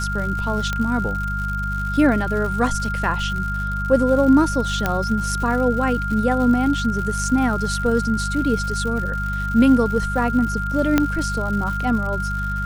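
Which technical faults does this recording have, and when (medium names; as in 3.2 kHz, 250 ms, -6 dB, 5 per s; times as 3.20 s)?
crackle 170 per s -28 dBFS
hum 50 Hz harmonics 4 -26 dBFS
whine 1.4 kHz -25 dBFS
0.73 s: pop -10 dBFS
4.86 s: pop -6 dBFS
10.98 s: pop -3 dBFS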